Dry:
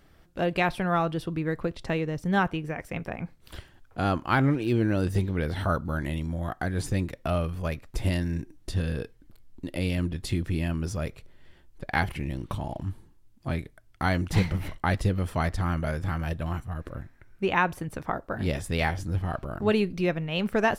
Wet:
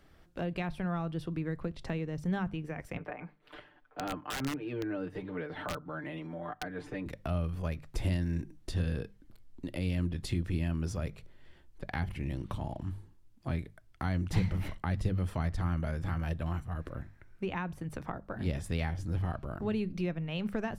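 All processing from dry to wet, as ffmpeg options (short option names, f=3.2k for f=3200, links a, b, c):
-filter_complex "[0:a]asettb=1/sr,asplit=3[a][b][c];[a]atrim=end=2.974[d];[b]atrim=start=2.97:end=7.06,asetpts=PTS-STARTPTS,afade=t=in:d=0.004:c=qsin,afade=t=out:st=4.086:d=0.004:c=qsin,acrossover=split=270 3000:gain=0.126 1 0.0891[e][f][g];[e][f][g]amix=inputs=3:normalize=0,aecho=1:1:6.7:0.88,atrim=end_sample=180369,aeval=exprs='(mod(6.68*val(0)+1,2)-1)/6.68':c=same[h];[c]atrim=start=7.056[i];[d][h]acrossfade=d=0.004:c1=hsin:c2=qsin[j];[j][i]acrossfade=d=0.004:c1=qsin:c2=hsin,highshelf=f=9.2k:g=-5,bandreject=f=50:t=h:w=6,bandreject=f=100:t=h:w=6,bandreject=f=150:t=h:w=6,bandreject=f=200:t=h:w=6,acrossover=split=220[k][l];[l]acompressor=threshold=-36dB:ratio=3[m];[k][m]amix=inputs=2:normalize=0,volume=-2.5dB"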